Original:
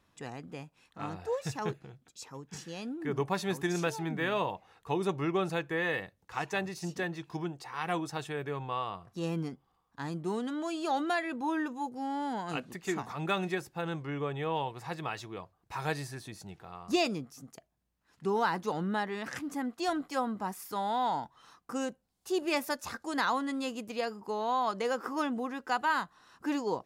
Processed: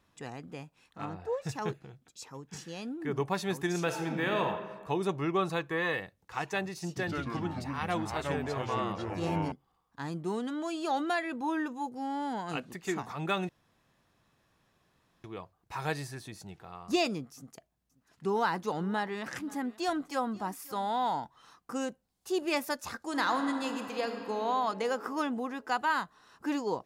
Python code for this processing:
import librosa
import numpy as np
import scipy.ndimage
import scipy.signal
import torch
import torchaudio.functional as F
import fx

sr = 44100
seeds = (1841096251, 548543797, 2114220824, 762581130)

y = fx.high_shelf(x, sr, hz=2900.0, db=-10.5, at=(1.05, 1.49))
y = fx.reverb_throw(y, sr, start_s=3.84, length_s=0.59, rt60_s=1.4, drr_db=4.0)
y = fx.small_body(y, sr, hz=(1100.0, 3900.0), ring_ms=35, db=12, at=(5.36, 5.94))
y = fx.echo_pitch(y, sr, ms=100, semitones=-4, count=3, db_per_echo=-3.0, at=(6.87, 9.52))
y = fx.echo_single(y, sr, ms=535, db=-21.0, at=(17.36, 21.13))
y = fx.reverb_throw(y, sr, start_s=22.99, length_s=1.42, rt60_s=3.0, drr_db=5.5)
y = fx.edit(y, sr, fx.room_tone_fill(start_s=13.49, length_s=1.75), tone=tone)